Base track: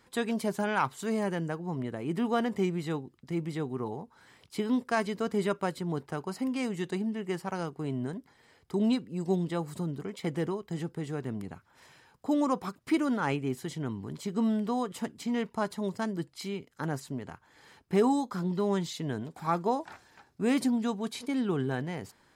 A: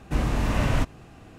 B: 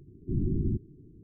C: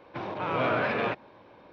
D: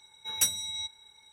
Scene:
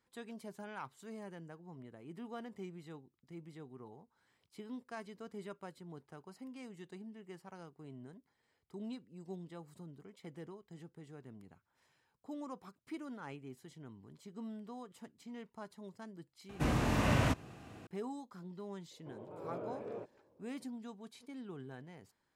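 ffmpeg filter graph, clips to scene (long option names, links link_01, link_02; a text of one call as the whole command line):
ffmpeg -i bed.wav -i cue0.wav -i cue1.wav -i cue2.wav -filter_complex "[0:a]volume=-17.5dB[link_01];[1:a]highpass=89[link_02];[3:a]firequalizer=gain_entry='entry(250,0);entry(420,7);entry(760,-4);entry(1700,-17)':delay=0.05:min_phase=1[link_03];[link_02]atrim=end=1.38,asetpts=PTS-STARTPTS,volume=-4dB,afade=type=in:duration=0.004:curve=hsin,afade=type=out:start_time=1.376:duration=0.004:curve=hsin,adelay=16490[link_04];[link_03]atrim=end=1.72,asetpts=PTS-STARTPTS,volume=-17dB,afade=type=in:duration=0.004:curve=hsin,afade=type=out:start_time=1.716:duration=0.004:curve=hsin,adelay=18910[link_05];[link_01][link_04][link_05]amix=inputs=3:normalize=0" out.wav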